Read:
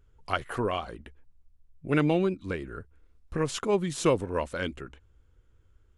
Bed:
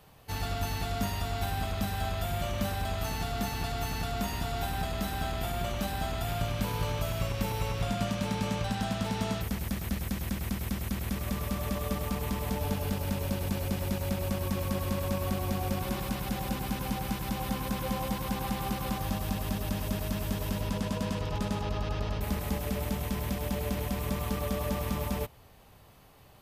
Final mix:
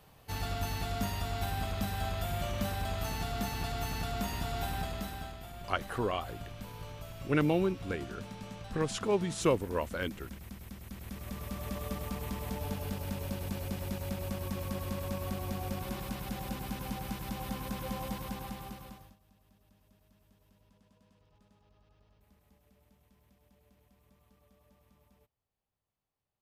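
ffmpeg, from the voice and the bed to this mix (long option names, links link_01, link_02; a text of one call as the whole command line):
ffmpeg -i stem1.wav -i stem2.wav -filter_complex "[0:a]adelay=5400,volume=-3.5dB[link_01];[1:a]volume=5.5dB,afade=type=out:start_time=4.73:duration=0.66:silence=0.281838,afade=type=in:start_time=10.82:duration=0.96:silence=0.398107,afade=type=out:start_time=18.13:duration=1.03:silence=0.0354813[link_02];[link_01][link_02]amix=inputs=2:normalize=0" out.wav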